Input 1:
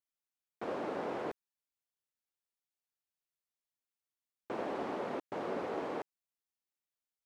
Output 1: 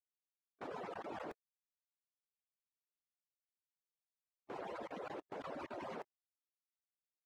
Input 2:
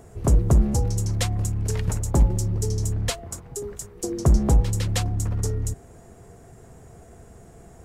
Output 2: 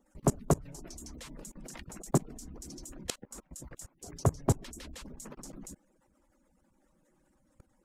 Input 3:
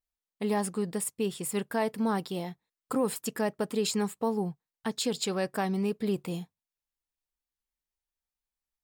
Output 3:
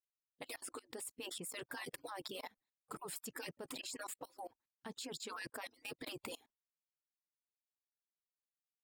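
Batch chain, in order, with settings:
harmonic-percussive split with one part muted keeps percussive
output level in coarse steps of 24 dB
level +2.5 dB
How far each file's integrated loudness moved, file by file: −8.0, −11.5, −15.5 LU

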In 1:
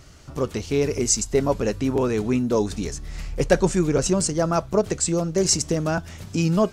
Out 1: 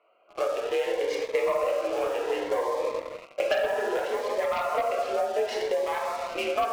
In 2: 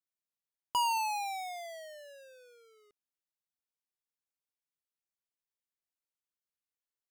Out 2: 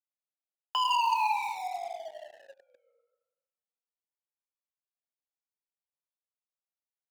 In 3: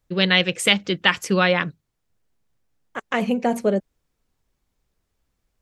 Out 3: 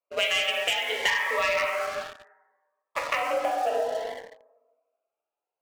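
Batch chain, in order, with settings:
adaptive Wiener filter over 25 samples
dense smooth reverb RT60 1.3 s, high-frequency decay 0.45×, DRR −3 dB
single-sideband voice off tune +53 Hz 500–2,900 Hz
leveller curve on the samples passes 2
high-shelf EQ 2,100 Hz +8.5 dB
notch filter 1,500 Hz, Q 19
downward compressor 6 to 1, threshold −22 dBFS
phaser whose notches keep moving one way rising 0.64 Hz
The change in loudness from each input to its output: −5.5, +4.5, −6.0 LU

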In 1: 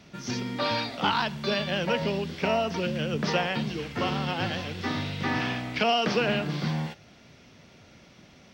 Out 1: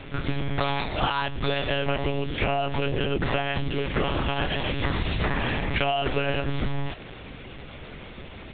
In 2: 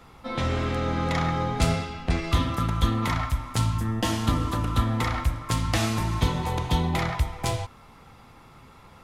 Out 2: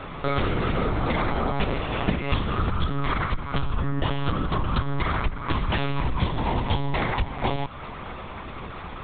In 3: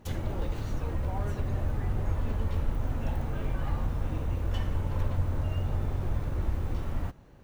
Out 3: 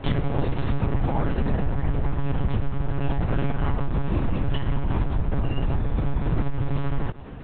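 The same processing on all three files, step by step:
downward compressor 8 to 1, threshold −35 dBFS
one-pitch LPC vocoder at 8 kHz 140 Hz
loudness normalisation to −27 LKFS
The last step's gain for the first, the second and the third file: +13.0, +14.0, +16.5 decibels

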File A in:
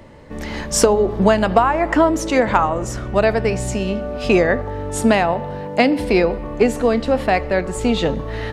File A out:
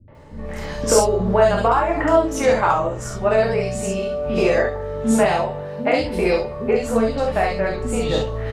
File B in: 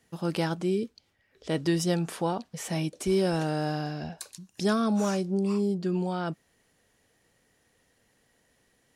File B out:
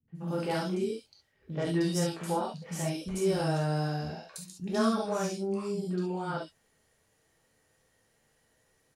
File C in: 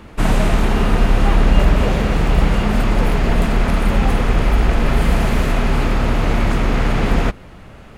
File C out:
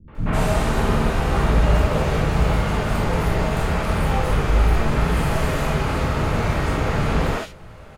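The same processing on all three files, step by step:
three-band delay without the direct sound lows, mids, highs 80/150 ms, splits 260/2,800 Hz
reverb whose tail is shaped and stops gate 90 ms flat, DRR −1.5 dB
level −5 dB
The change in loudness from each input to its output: −1.5, −3.0, −3.5 LU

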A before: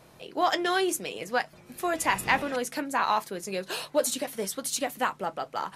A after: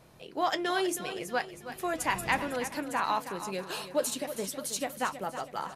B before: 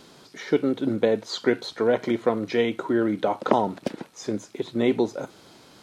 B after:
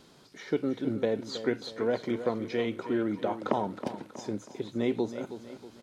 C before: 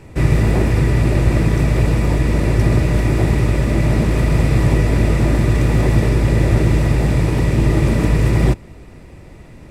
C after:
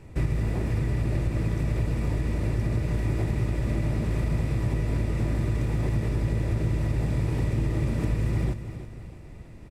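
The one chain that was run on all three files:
low-shelf EQ 160 Hz +5.5 dB
downward compressor, threshold −12 dBFS
on a send: repeating echo 320 ms, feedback 45%, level −11.5 dB
on the sum: normalise the peak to −12 dBFS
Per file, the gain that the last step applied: −4.0, −7.5, −9.5 decibels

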